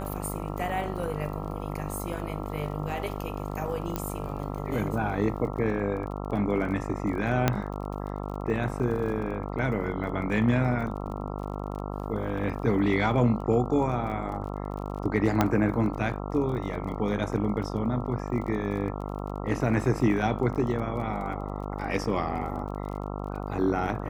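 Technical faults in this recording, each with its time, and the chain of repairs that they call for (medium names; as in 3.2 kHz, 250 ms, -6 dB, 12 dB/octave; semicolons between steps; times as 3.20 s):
buzz 50 Hz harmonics 27 -34 dBFS
crackle 30 per s -37 dBFS
3.96 s: pop -14 dBFS
7.48 s: pop -7 dBFS
15.41 s: pop -8 dBFS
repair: de-click; de-hum 50 Hz, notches 27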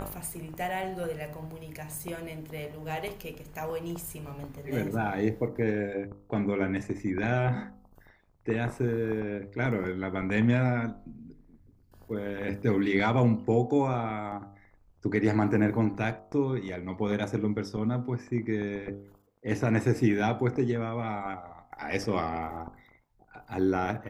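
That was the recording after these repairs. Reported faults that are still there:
nothing left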